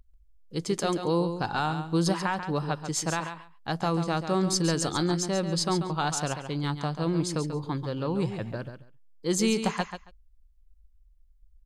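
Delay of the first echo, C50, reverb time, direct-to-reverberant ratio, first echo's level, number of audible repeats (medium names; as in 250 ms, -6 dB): 138 ms, no reverb, no reverb, no reverb, -9.0 dB, 2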